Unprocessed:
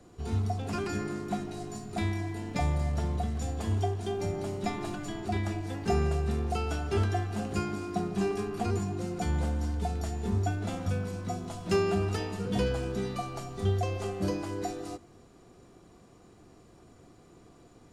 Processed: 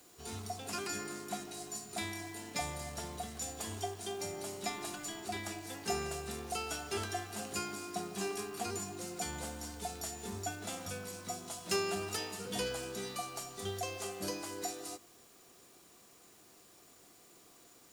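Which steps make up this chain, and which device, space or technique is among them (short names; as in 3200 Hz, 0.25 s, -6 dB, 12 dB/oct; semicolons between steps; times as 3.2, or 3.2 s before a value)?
turntable without a phono preamp (RIAA curve recording; white noise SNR 24 dB); gain -4.5 dB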